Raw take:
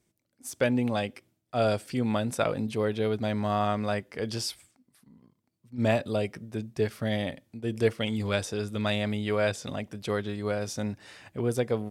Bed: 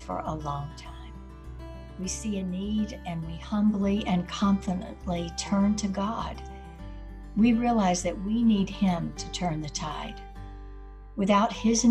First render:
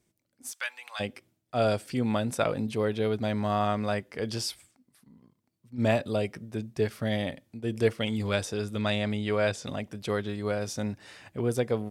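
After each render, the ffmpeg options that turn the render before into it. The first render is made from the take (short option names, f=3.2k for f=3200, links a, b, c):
-filter_complex "[0:a]asplit=3[a][b][c];[a]afade=t=out:st=0.51:d=0.02[d];[b]highpass=f=1.1k:w=0.5412,highpass=f=1.1k:w=1.3066,afade=t=in:st=0.51:d=0.02,afade=t=out:st=0.99:d=0.02[e];[c]afade=t=in:st=0.99:d=0.02[f];[d][e][f]amix=inputs=3:normalize=0,asettb=1/sr,asplit=3[g][h][i];[g]atrim=end=8.804[j];[h]atrim=start=8.8:end=9.65,asetpts=PTS-STARTPTS,afade=t=in:d=0.004:c=qsin,afade=t=out:st=0.846:d=0.004:c=qsin,lowpass=10k[k];[i]atrim=start=9.646[l];[j][k]acrossfade=d=0.004:c1=hsin:c2=qsin[m];[m][l]acrossfade=d=0.004:c1=qsin:c2=hsin"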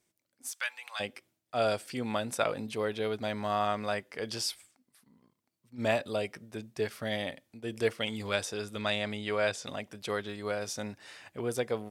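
-af "lowshelf=f=330:g=-11.5"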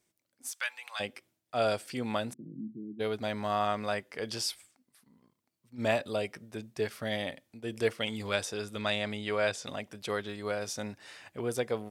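-filter_complex "[0:a]asplit=3[a][b][c];[a]afade=t=out:st=2.32:d=0.02[d];[b]asuperpass=centerf=210:order=12:qfactor=1,afade=t=in:st=2.32:d=0.02,afade=t=out:st=2.99:d=0.02[e];[c]afade=t=in:st=2.99:d=0.02[f];[d][e][f]amix=inputs=3:normalize=0"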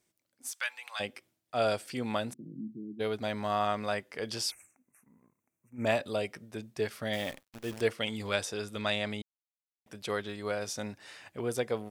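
-filter_complex "[0:a]asplit=3[a][b][c];[a]afade=t=out:st=4.5:d=0.02[d];[b]asuperstop=centerf=4000:order=20:qfactor=1.3,afade=t=in:st=4.5:d=0.02,afade=t=out:st=5.85:d=0.02[e];[c]afade=t=in:st=5.85:d=0.02[f];[d][e][f]amix=inputs=3:normalize=0,asettb=1/sr,asplit=3[g][h][i];[g]atrim=end=7.134[j];[h]atrim=start=7.13:end=7.81,asetpts=PTS-STARTPTS,afade=t=in:d=0.004:c=qsin,afade=t=out:st=0.676:d=0.004:c=qsin,acrusher=bits=8:dc=4:mix=0:aa=0.000001[k];[i]atrim=start=7.806[l];[j][k]acrossfade=d=0.004:c1=hsin:c2=qsin[m];[m][l]acrossfade=d=0.004:c1=qsin:c2=hsin,asplit=3[n][o][p];[n]atrim=end=9.22,asetpts=PTS-STARTPTS,afade=t=out:st=9.216:d=0.004:c=hsin[q];[o]atrim=start=9.22:end=9.86,asetpts=PTS-STARTPTS,volume=0[r];[p]atrim=start=9.86,asetpts=PTS-STARTPTS,afade=t=in:d=0.004:c=hsin[s];[q][r][s]concat=n=3:v=0:a=1"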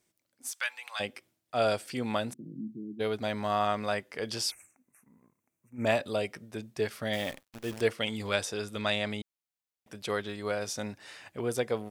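-af "volume=1.5dB"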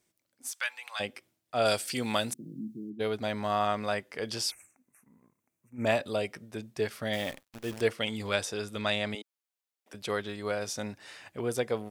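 -filter_complex "[0:a]asettb=1/sr,asplit=3[a][b][c];[a]atrim=end=1.654[d];[b]atrim=start=1.65:end=2.9,asetpts=PTS-STARTPTS,afade=t=in:d=0.004:c=qsin,afade=t=out:st=1.246:d=0.004:c=qsin,highshelf=f=2.8k:g=11.5[e];[c]atrim=start=2.896[f];[d][e]acrossfade=d=0.004:c1=hsin:c2=qsin[g];[g][f]acrossfade=d=0.004:c1=qsin:c2=hsin,asettb=1/sr,asplit=3[h][i][j];[h]atrim=end=9.154[k];[i]atrim=start=9.15:end=9.94,asetpts=PTS-STARTPTS,afade=t=in:d=0.004:c=qsin,afade=t=out:st=0.786:d=0.004:c=qsin,highpass=f=290:w=0.5412,highpass=f=290:w=1.3066[l];[j]atrim=start=9.936[m];[k][l]acrossfade=d=0.004:c1=hsin:c2=qsin[n];[n][m]acrossfade=d=0.004:c1=qsin:c2=hsin"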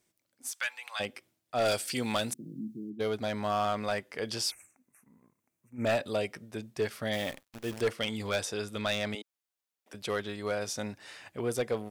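-af "asoftclip=type=hard:threshold=-22.5dB"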